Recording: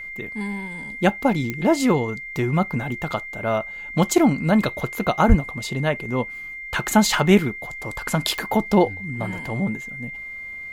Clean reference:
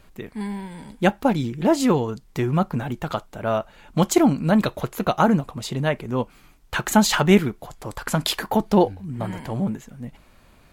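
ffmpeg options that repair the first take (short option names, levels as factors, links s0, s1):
-filter_complex "[0:a]adeclick=t=4,bandreject=f=2100:w=30,asplit=3[s0][s1][s2];[s0]afade=t=out:st=5.28:d=0.02[s3];[s1]highpass=f=140:w=0.5412,highpass=f=140:w=1.3066,afade=t=in:st=5.28:d=0.02,afade=t=out:st=5.4:d=0.02[s4];[s2]afade=t=in:st=5.4:d=0.02[s5];[s3][s4][s5]amix=inputs=3:normalize=0"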